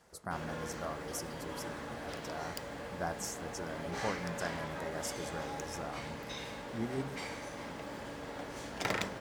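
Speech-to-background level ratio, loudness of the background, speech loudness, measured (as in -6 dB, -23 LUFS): -0.5 dB, -42.0 LUFS, -42.5 LUFS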